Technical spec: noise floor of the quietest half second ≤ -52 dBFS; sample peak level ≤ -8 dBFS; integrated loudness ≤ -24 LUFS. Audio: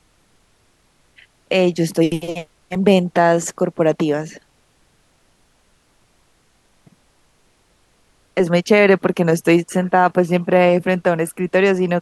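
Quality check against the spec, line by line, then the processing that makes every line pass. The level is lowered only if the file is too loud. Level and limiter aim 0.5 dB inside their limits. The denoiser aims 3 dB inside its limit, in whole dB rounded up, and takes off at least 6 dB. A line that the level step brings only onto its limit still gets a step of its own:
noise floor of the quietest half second -59 dBFS: OK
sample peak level -2.0 dBFS: fail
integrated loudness -17.0 LUFS: fail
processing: gain -7.5 dB

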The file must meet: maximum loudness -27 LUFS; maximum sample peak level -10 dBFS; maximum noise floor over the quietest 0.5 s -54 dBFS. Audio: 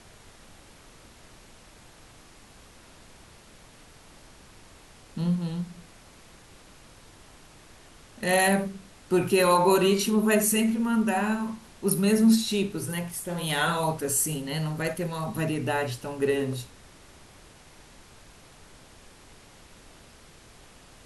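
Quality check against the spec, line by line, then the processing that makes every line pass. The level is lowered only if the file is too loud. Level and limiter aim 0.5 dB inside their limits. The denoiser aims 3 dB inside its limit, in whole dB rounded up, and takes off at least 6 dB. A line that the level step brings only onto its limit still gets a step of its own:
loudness -25.5 LUFS: fail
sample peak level -8.5 dBFS: fail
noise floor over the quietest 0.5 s -52 dBFS: fail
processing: denoiser 6 dB, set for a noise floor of -52 dBFS; gain -2 dB

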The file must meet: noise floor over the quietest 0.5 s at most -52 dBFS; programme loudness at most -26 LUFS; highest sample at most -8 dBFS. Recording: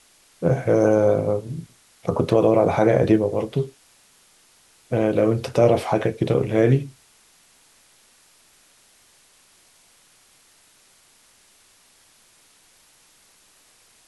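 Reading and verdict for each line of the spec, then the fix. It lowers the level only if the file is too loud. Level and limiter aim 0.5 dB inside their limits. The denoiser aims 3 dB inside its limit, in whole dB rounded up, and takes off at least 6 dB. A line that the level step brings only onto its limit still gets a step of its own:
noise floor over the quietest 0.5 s -56 dBFS: OK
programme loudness -20.5 LUFS: fail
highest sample -5.5 dBFS: fail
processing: gain -6 dB

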